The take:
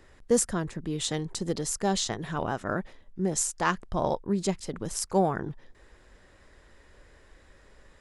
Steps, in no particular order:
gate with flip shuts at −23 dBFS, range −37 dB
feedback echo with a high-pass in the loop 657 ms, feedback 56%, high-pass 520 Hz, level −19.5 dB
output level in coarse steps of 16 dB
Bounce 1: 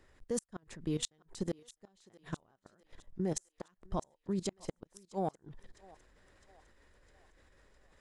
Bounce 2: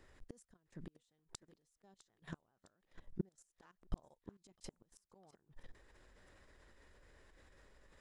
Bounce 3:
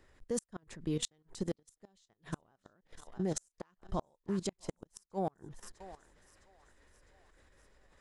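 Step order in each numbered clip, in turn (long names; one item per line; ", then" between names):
output level in coarse steps, then gate with flip, then feedback echo with a high-pass in the loop
gate with flip, then feedback echo with a high-pass in the loop, then output level in coarse steps
feedback echo with a high-pass in the loop, then output level in coarse steps, then gate with flip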